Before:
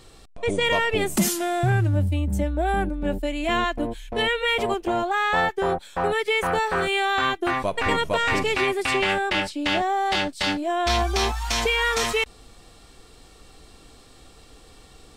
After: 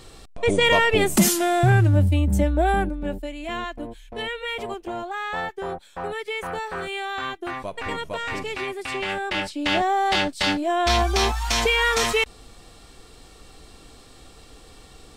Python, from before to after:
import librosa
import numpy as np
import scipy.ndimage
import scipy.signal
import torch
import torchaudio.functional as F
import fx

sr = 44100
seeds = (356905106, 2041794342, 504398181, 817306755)

y = fx.gain(x, sr, db=fx.line((2.62, 4.0), (3.36, -7.0), (8.88, -7.0), (9.82, 2.0)))